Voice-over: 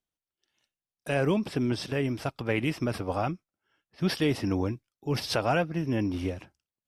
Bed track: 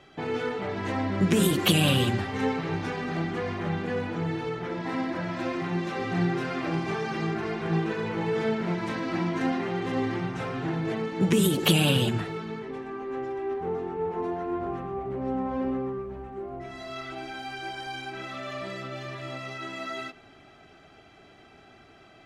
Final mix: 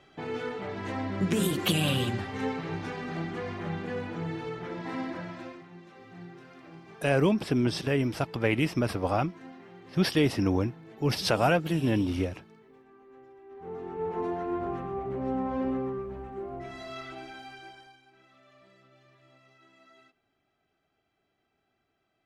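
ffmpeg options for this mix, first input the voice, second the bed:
ffmpeg -i stem1.wav -i stem2.wav -filter_complex "[0:a]adelay=5950,volume=2dB[link_01];[1:a]volume=14.5dB,afade=type=out:start_time=5.07:duration=0.58:silence=0.16788,afade=type=in:start_time=13.49:duration=0.69:silence=0.112202,afade=type=out:start_time=16.67:duration=1.31:silence=0.0749894[link_02];[link_01][link_02]amix=inputs=2:normalize=0" out.wav

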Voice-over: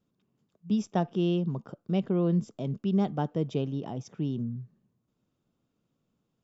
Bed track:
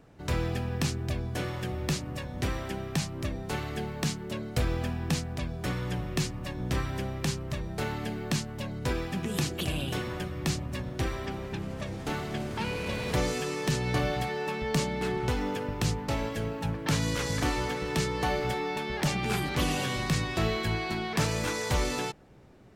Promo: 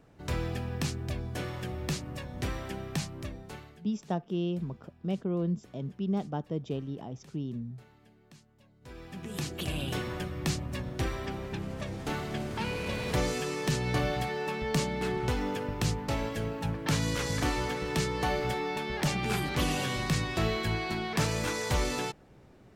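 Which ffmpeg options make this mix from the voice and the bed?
ffmpeg -i stem1.wav -i stem2.wav -filter_complex "[0:a]adelay=3150,volume=-4.5dB[link_01];[1:a]volume=22.5dB,afade=type=out:start_time=2.98:duration=0.84:silence=0.0668344,afade=type=in:start_time=8.8:duration=1.09:silence=0.0530884[link_02];[link_01][link_02]amix=inputs=2:normalize=0" out.wav

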